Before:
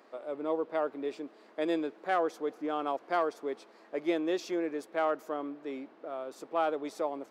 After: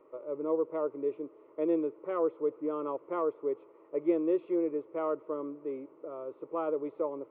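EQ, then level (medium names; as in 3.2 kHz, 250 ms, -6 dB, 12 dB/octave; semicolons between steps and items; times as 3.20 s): Gaussian low-pass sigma 3.7 samples; tilt EQ -3.5 dB/octave; static phaser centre 1.1 kHz, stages 8; 0.0 dB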